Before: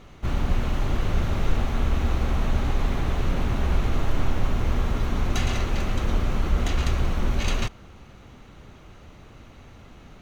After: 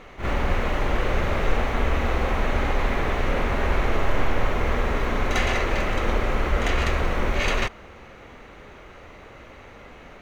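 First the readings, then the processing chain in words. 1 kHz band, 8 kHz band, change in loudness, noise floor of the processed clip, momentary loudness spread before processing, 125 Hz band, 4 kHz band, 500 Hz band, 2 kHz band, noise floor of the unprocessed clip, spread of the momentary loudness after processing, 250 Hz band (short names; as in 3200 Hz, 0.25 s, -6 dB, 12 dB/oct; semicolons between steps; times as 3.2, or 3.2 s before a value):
+6.5 dB, n/a, +2.0 dB, -45 dBFS, 2 LU, -2.5 dB, +3.0 dB, +7.5 dB, +8.5 dB, -48 dBFS, 21 LU, +0.5 dB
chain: graphic EQ 125/500/1000/2000 Hz -4/+9/+4/+10 dB; reverse echo 48 ms -7.5 dB; gain -1.5 dB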